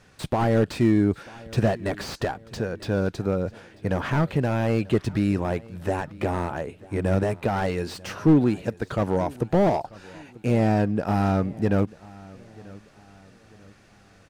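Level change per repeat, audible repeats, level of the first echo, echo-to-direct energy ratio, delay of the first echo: -7.5 dB, 2, -22.0 dB, -21.0 dB, 0.94 s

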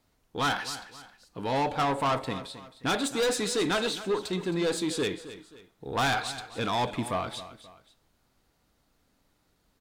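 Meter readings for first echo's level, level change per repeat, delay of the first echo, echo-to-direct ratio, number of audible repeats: -14.5 dB, -8.5 dB, 0.266 s, -14.0 dB, 2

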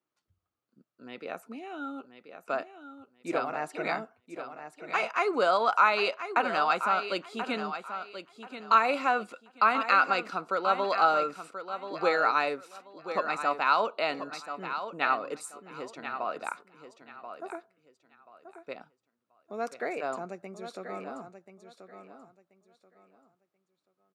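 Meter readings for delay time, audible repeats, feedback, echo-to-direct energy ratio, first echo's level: 1.033 s, 3, 24%, -9.5 dB, -10.0 dB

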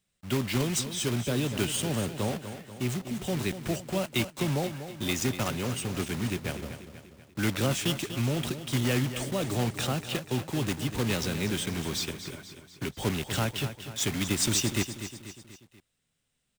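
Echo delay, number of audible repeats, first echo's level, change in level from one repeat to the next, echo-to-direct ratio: 0.243 s, 4, -11.0 dB, -5.5 dB, -9.5 dB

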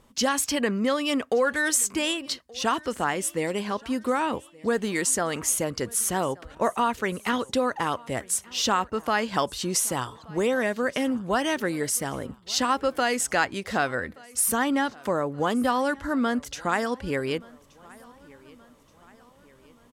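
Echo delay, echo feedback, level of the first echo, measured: 1.176 s, 51%, -24.0 dB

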